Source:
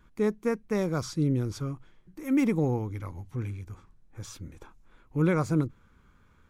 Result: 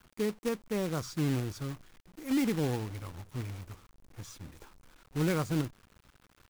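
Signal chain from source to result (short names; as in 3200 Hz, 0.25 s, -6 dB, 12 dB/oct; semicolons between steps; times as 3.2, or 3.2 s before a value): companded quantiser 4-bit; gain -5 dB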